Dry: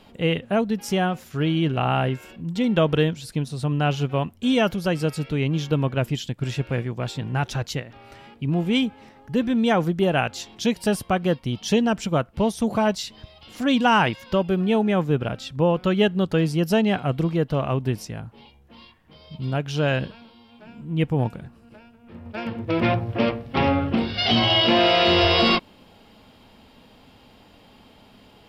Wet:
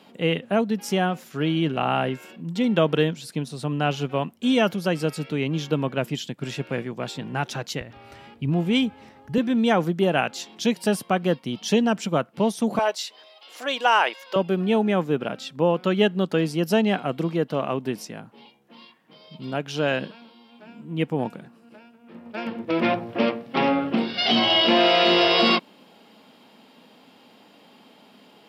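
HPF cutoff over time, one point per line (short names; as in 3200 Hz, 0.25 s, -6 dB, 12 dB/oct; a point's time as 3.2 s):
HPF 24 dB/oct
160 Hz
from 7.81 s 50 Hz
from 9.38 s 160 Hz
from 12.79 s 440 Hz
from 14.36 s 180 Hz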